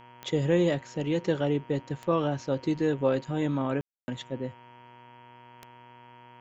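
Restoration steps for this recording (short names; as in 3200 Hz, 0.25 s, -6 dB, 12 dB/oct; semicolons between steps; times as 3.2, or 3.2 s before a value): de-click; de-hum 122.1 Hz, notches 27; notch 940 Hz, Q 30; room tone fill 3.81–4.08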